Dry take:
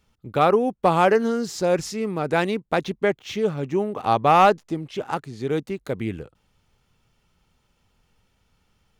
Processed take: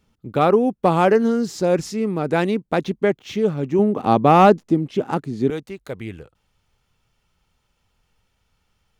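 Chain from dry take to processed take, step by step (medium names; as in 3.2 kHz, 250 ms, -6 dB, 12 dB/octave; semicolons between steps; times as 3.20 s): peaking EQ 240 Hz +6.5 dB 2 oct, from 3.79 s +13 dB, from 5.50 s -4.5 dB; trim -1 dB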